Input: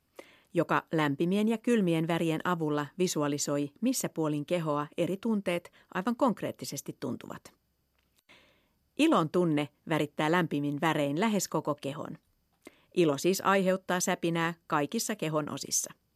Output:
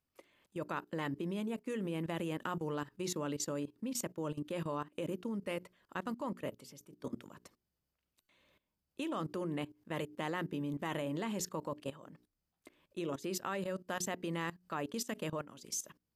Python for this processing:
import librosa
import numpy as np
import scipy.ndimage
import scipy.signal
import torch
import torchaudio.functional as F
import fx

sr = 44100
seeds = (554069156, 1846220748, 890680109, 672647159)

y = fx.hum_notches(x, sr, base_hz=60, count=7)
y = fx.level_steps(y, sr, step_db=17)
y = y * librosa.db_to_amplitude(-3.0)